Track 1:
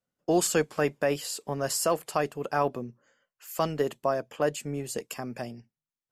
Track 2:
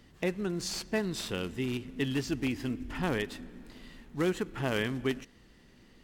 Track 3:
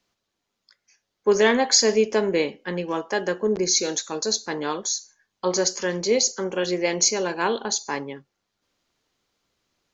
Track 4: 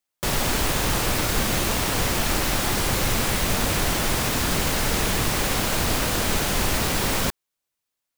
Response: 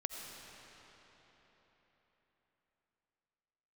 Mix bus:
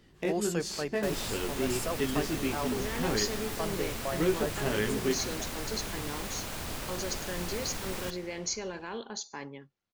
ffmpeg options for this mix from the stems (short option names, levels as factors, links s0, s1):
-filter_complex "[0:a]volume=0.355[s0];[1:a]equalizer=f=390:t=o:w=0.27:g=7,flanger=delay=18:depth=2.2:speed=1.6,volume=1.06,asplit=2[s1][s2];[s2]volume=0.106[s3];[2:a]bass=f=250:g=7,treble=f=4000:g=-12,alimiter=limit=0.158:level=0:latency=1,highshelf=f=2800:g=11,adelay=1450,volume=0.224[s4];[3:a]adelay=800,volume=0.126,asplit=2[s5][s6];[s6]volume=0.562[s7];[4:a]atrim=start_sample=2205[s8];[s3][s7]amix=inputs=2:normalize=0[s9];[s9][s8]afir=irnorm=-1:irlink=0[s10];[s0][s1][s4][s5][s10]amix=inputs=5:normalize=0"